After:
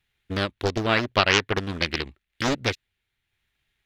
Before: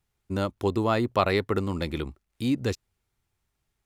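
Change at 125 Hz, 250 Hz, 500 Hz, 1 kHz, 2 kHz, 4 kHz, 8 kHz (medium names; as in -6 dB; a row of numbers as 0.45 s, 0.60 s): 0.0 dB, -2.0 dB, 0.0 dB, +2.5 dB, +10.0 dB, +11.5 dB, +11.5 dB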